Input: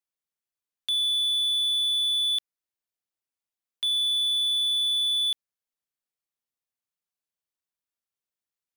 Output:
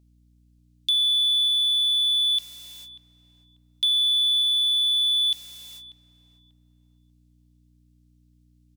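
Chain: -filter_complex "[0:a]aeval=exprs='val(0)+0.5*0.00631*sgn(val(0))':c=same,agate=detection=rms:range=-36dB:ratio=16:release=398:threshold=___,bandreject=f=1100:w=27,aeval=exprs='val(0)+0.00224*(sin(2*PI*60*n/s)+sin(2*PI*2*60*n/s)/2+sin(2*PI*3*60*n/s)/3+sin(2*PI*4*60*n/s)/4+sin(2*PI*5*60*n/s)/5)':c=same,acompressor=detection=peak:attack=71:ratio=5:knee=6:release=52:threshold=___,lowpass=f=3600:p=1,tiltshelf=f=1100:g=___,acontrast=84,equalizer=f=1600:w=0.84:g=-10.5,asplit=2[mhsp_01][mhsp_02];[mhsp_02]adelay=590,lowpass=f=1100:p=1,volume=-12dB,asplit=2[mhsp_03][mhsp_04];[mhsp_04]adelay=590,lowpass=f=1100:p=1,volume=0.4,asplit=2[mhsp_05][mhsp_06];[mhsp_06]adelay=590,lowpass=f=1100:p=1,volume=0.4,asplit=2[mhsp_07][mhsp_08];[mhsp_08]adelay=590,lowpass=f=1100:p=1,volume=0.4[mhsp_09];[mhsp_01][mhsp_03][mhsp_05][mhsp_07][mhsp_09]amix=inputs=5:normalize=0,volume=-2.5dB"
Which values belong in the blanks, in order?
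-42dB, -28dB, -9.5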